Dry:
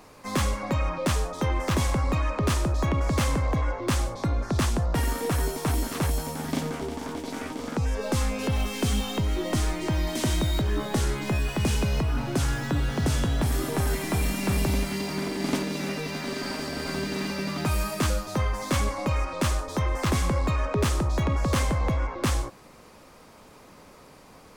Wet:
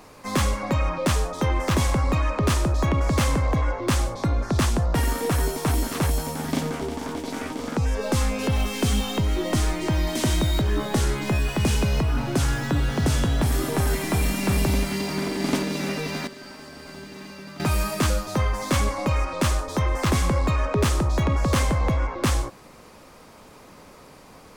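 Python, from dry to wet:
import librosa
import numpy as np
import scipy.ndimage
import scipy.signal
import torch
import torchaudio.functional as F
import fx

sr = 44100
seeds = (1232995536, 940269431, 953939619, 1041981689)

y = fx.comb_fb(x, sr, f0_hz=120.0, decay_s=0.89, harmonics='odd', damping=0.0, mix_pct=80, at=(16.27, 17.6))
y = y * librosa.db_to_amplitude(3.0)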